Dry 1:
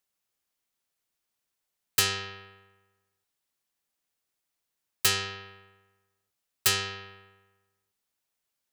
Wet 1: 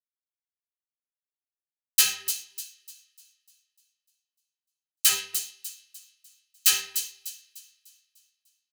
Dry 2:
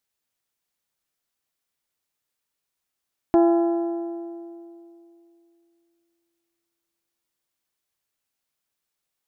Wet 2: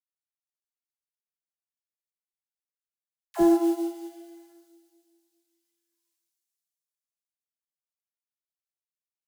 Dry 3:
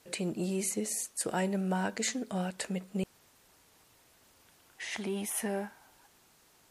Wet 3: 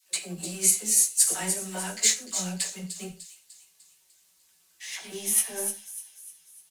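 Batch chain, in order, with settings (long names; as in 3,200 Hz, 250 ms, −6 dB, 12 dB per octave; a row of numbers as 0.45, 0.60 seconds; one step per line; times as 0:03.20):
mu-law and A-law mismatch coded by A
high-shelf EQ 11,000 Hz −11.5 dB
notch filter 1,400 Hz, Q 13
comb filter 5.3 ms, depth 51%
multi-voice chorus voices 6, 0.83 Hz, delay 15 ms, depth 3.6 ms
first-order pre-emphasis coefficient 0.9
all-pass dispersion lows, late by 69 ms, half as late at 550 Hz
on a send: delay with a high-pass on its return 299 ms, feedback 50%, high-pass 4,200 Hz, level −5 dB
on the sum: reverb whose tail is shaped and stops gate 150 ms falling, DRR 5 dB
expander for the loud parts 1.5 to 1, over −52 dBFS
loudness normalisation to −24 LKFS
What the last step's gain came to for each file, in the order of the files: +13.0, +16.5, +21.0 decibels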